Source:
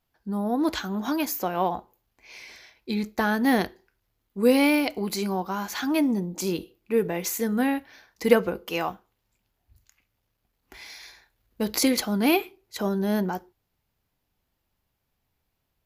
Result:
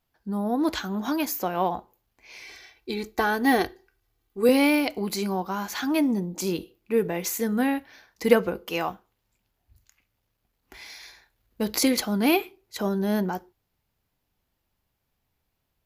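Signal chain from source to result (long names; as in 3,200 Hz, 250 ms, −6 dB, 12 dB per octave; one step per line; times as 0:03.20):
0:02.42–0:04.49: comb filter 2.6 ms, depth 60%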